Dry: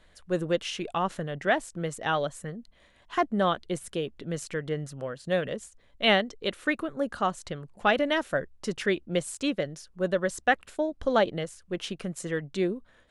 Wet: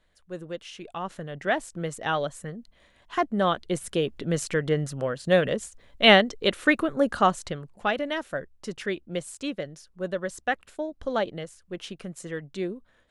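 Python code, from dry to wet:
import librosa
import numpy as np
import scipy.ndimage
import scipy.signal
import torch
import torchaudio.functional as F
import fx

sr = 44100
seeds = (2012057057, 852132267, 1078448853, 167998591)

y = fx.gain(x, sr, db=fx.line((0.65, -9.0), (1.63, 0.5), (3.33, 0.5), (4.13, 6.5), (7.29, 6.5), (7.95, -3.5)))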